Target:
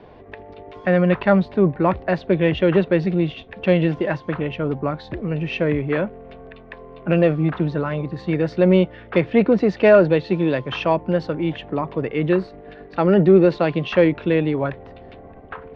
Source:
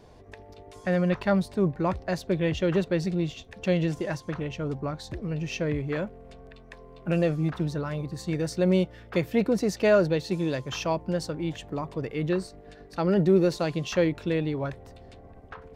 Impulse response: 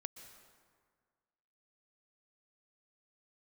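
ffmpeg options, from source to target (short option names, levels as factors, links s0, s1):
-filter_complex "[0:a]lowpass=f=3200:w=0.5412,lowpass=f=3200:w=1.3066,acrossover=split=160[s0][s1];[s1]acontrast=78[s2];[s0][s2]amix=inputs=2:normalize=0,volume=1.26"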